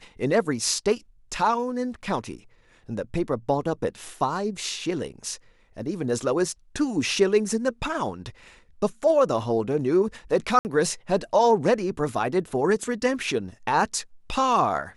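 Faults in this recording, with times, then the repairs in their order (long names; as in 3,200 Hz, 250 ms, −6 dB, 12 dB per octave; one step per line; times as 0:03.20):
0:10.59–0:10.65: drop-out 59 ms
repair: repair the gap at 0:10.59, 59 ms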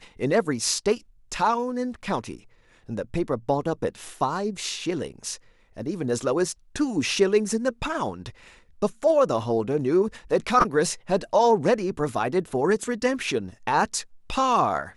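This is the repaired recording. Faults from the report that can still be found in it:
none of them is left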